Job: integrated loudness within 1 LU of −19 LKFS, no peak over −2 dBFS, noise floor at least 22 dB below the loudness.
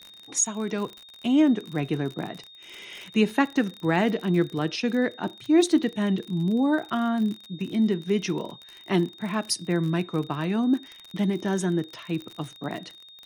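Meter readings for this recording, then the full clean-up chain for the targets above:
crackle rate 45 per second; interfering tone 3,700 Hz; level of the tone −46 dBFS; integrated loudness −26.0 LKFS; sample peak −7.5 dBFS; target loudness −19.0 LKFS
→ click removal
notch filter 3,700 Hz, Q 30
level +7 dB
brickwall limiter −2 dBFS

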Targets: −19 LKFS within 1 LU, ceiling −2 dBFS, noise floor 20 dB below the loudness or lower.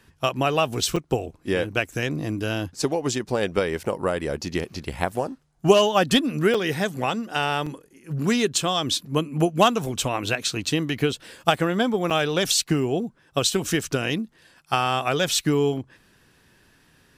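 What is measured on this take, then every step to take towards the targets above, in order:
number of dropouts 4; longest dropout 5.2 ms; integrated loudness −24.0 LKFS; sample peak −3.0 dBFS; target loudness −19.0 LKFS
→ repair the gap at 0:00.96/0:06.54/0:07.66/0:12.10, 5.2 ms
level +5 dB
brickwall limiter −2 dBFS

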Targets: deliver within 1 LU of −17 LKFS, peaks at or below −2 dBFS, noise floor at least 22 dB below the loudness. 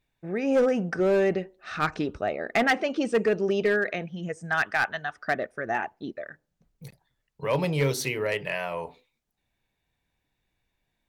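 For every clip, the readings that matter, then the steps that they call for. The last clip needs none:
share of clipped samples 0.7%; peaks flattened at −16.5 dBFS; integrated loudness −27.0 LKFS; sample peak −16.5 dBFS; target loudness −17.0 LKFS
→ clipped peaks rebuilt −16.5 dBFS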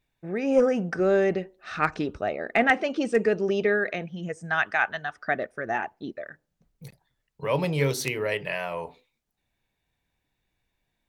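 share of clipped samples 0.0%; integrated loudness −26.0 LKFS; sample peak −7.5 dBFS; target loudness −17.0 LKFS
→ level +9 dB
brickwall limiter −2 dBFS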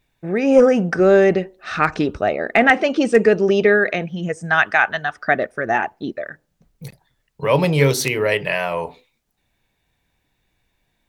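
integrated loudness −17.5 LKFS; sample peak −2.0 dBFS; background noise floor −70 dBFS

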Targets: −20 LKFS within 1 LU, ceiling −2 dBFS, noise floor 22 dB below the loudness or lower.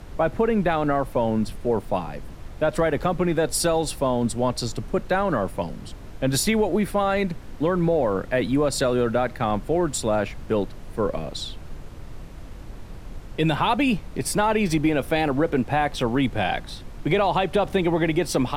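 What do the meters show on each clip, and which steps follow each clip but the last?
background noise floor −39 dBFS; target noise floor −46 dBFS; integrated loudness −23.5 LKFS; sample peak −9.0 dBFS; target loudness −20.0 LKFS
→ noise reduction from a noise print 7 dB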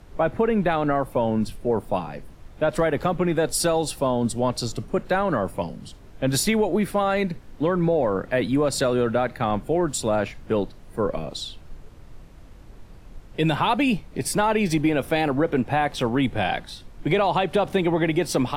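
background noise floor −45 dBFS; target noise floor −46 dBFS
→ noise reduction from a noise print 6 dB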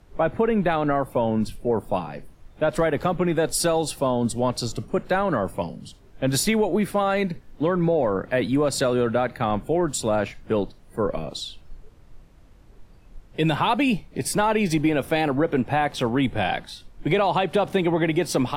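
background noise floor −50 dBFS; integrated loudness −23.5 LKFS; sample peak −9.5 dBFS; target loudness −20.0 LKFS
→ level +3.5 dB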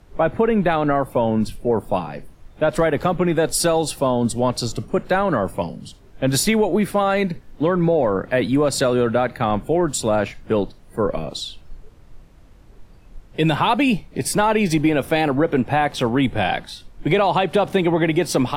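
integrated loudness −20.0 LKFS; sample peak −6.0 dBFS; background noise floor −47 dBFS

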